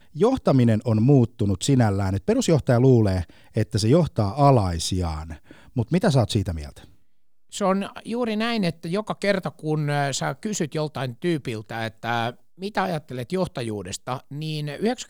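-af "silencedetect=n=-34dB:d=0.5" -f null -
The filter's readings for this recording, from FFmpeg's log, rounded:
silence_start: 6.84
silence_end: 7.53 | silence_duration: 0.69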